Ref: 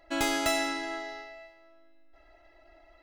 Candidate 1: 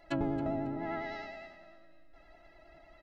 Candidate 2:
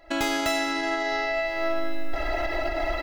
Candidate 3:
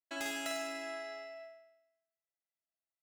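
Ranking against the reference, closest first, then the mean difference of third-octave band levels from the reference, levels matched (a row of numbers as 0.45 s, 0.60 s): 3, 1, 2; 6.5 dB, 9.5 dB, 12.5 dB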